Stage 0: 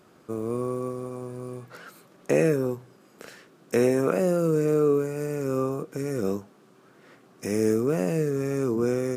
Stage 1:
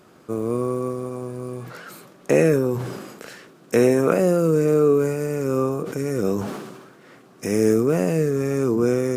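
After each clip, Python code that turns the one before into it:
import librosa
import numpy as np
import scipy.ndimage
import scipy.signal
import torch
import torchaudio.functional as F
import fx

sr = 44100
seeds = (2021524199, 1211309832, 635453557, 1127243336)

y = fx.sustainer(x, sr, db_per_s=45.0)
y = F.gain(torch.from_numpy(y), 4.5).numpy()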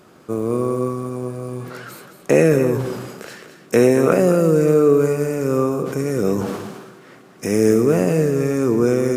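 y = x + 10.0 ** (-10.0 / 20.0) * np.pad(x, (int(215 * sr / 1000.0), 0))[:len(x)]
y = F.gain(torch.from_numpy(y), 3.0).numpy()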